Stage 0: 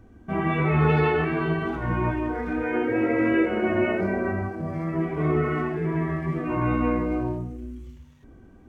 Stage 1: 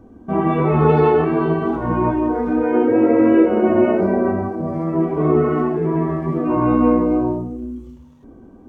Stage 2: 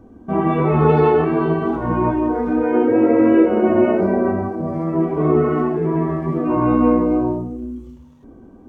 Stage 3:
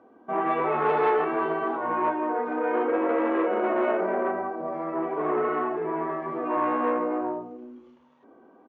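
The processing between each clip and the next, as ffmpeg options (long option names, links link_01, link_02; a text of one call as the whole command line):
ffmpeg -i in.wav -af "equalizer=frequency=250:width_type=o:width=1:gain=9,equalizer=frequency=500:width_type=o:width=1:gain=7,equalizer=frequency=1000:width_type=o:width=1:gain=8,equalizer=frequency=2000:width_type=o:width=1:gain=-7" out.wav
ffmpeg -i in.wav -af anull out.wav
ffmpeg -i in.wav -af "aresample=16000,asoftclip=type=tanh:threshold=-11.5dB,aresample=44100,highpass=580,lowpass=2600" out.wav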